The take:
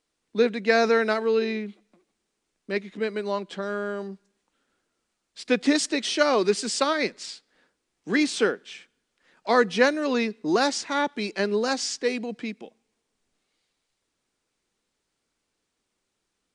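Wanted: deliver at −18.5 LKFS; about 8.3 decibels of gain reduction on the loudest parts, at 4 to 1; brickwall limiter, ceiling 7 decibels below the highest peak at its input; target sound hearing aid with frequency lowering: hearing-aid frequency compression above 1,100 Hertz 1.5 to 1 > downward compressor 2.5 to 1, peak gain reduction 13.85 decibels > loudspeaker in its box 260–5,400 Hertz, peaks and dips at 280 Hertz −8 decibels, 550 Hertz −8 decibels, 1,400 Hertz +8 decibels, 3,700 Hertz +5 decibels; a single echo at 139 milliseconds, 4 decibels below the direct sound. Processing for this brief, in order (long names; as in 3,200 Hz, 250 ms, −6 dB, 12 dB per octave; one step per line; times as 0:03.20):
downward compressor 4 to 1, threshold −25 dBFS
brickwall limiter −20 dBFS
single-tap delay 139 ms −4 dB
hearing-aid frequency compression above 1,100 Hz 1.5 to 1
downward compressor 2.5 to 1, threshold −44 dBFS
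loudspeaker in its box 260–5,400 Hz, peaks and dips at 280 Hz −8 dB, 550 Hz −8 dB, 1,400 Hz +8 dB, 3,700 Hz +5 dB
level +24 dB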